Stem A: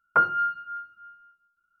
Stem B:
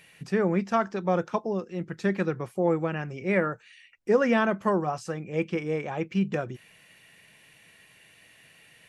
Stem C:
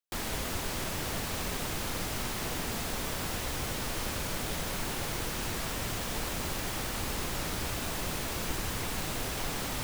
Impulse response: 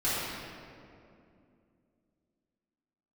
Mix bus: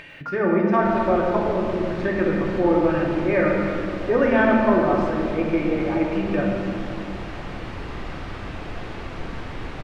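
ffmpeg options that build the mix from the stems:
-filter_complex "[0:a]aemphasis=mode=production:type=riaa,adelay=100,volume=-15dB[link_01];[1:a]lowpass=2600,aecho=1:1:3.3:0.48,volume=-0.5dB,asplit=3[link_02][link_03][link_04];[link_03]volume=-6.5dB[link_05];[2:a]lowpass=2600,adelay=700,volume=-5dB,asplit=2[link_06][link_07];[link_07]volume=-6dB[link_08];[link_04]apad=whole_len=464418[link_09];[link_06][link_09]sidechaincompress=threshold=-28dB:ratio=8:attack=16:release=340[link_10];[3:a]atrim=start_sample=2205[link_11];[link_05][link_08]amix=inputs=2:normalize=0[link_12];[link_12][link_11]afir=irnorm=-1:irlink=0[link_13];[link_01][link_02][link_10][link_13]amix=inputs=4:normalize=0,acompressor=mode=upward:threshold=-33dB:ratio=2.5"

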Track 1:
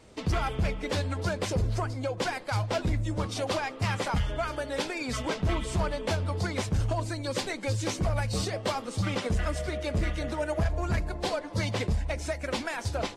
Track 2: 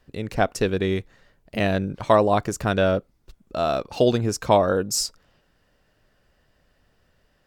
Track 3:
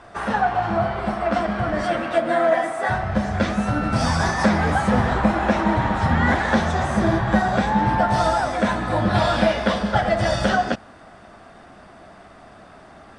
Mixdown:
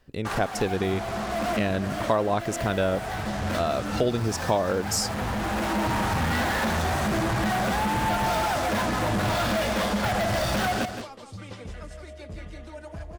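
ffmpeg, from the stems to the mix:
ffmpeg -i stem1.wav -i stem2.wav -i stem3.wav -filter_complex "[0:a]adelay=2350,volume=-11.5dB,asplit=2[link_01][link_02];[link_02]volume=-6dB[link_03];[1:a]volume=0dB,asplit=2[link_04][link_05];[2:a]asoftclip=type=hard:threshold=-21dB,acrusher=bits=4:mix=0:aa=0.5,adelay=100,volume=1.5dB,asplit=2[link_06][link_07];[link_07]volume=-10dB[link_08];[link_05]apad=whole_len=585772[link_09];[link_06][link_09]sidechaincompress=threshold=-27dB:ratio=8:attack=31:release=1260[link_10];[link_03][link_08]amix=inputs=2:normalize=0,aecho=0:1:167:1[link_11];[link_01][link_04][link_10][link_11]amix=inputs=4:normalize=0,acompressor=threshold=-24dB:ratio=2" out.wav

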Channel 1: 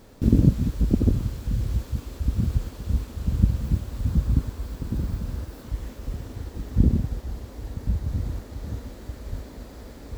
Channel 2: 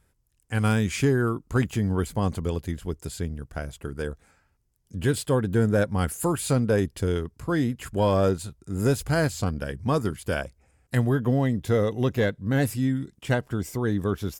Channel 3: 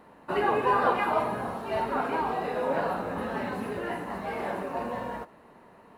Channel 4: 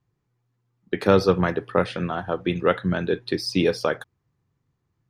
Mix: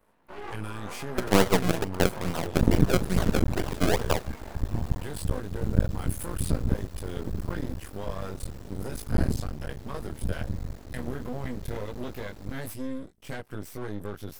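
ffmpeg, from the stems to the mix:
ffmpeg -i stem1.wav -i stem2.wav -i stem3.wav -i stem4.wav -filter_complex "[0:a]adelay=2350,volume=-1.5dB[link_01];[1:a]highshelf=frequency=11000:gain=9.5,bandreject=frequency=7100:width=7.2,volume=-1dB[link_02];[2:a]volume=-7dB[link_03];[3:a]acrusher=samples=33:mix=1:aa=0.000001:lfo=1:lforange=33:lforate=2.3,adelay=250,volume=0dB[link_04];[link_02][link_03]amix=inputs=2:normalize=0,flanger=delay=19:depth=2:speed=0.15,alimiter=limit=-23.5dB:level=0:latency=1:release=75,volume=0dB[link_05];[link_01][link_04][link_05]amix=inputs=3:normalize=0,aeval=exprs='max(val(0),0)':channel_layout=same" out.wav

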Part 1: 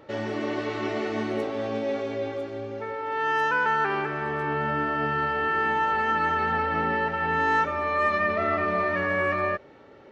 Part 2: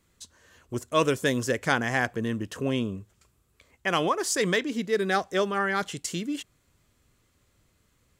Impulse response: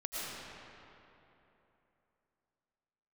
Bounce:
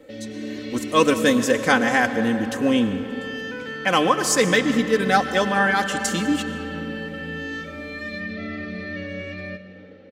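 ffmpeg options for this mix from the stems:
-filter_complex "[0:a]equalizer=frequency=125:width_type=o:width=1:gain=9,equalizer=frequency=250:width_type=o:width=1:gain=6,equalizer=frequency=500:width_type=o:width=1:gain=12,equalizer=frequency=1000:width_type=o:width=1:gain=-8,equalizer=frequency=2000:width_type=o:width=1:gain=8,equalizer=frequency=4000:width_type=o:width=1:gain=7,acrossover=split=240|3000[link_01][link_02][link_03];[link_02]acompressor=threshold=-34dB:ratio=6[link_04];[link_01][link_04][link_03]amix=inputs=3:normalize=0,volume=-10dB,asplit=2[link_05][link_06];[link_06]volume=-13.5dB[link_07];[1:a]volume=0dB,asplit=2[link_08][link_09];[link_09]volume=-11dB[link_10];[2:a]atrim=start_sample=2205[link_11];[link_07][link_10]amix=inputs=2:normalize=0[link_12];[link_12][link_11]afir=irnorm=-1:irlink=0[link_13];[link_05][link_08][link_13]amix=inputs=3:normalize=0,aecho=1:1:3.9:0.69,dynaudnorm=framelen=120:gausssize=7:maxgain=4dB"

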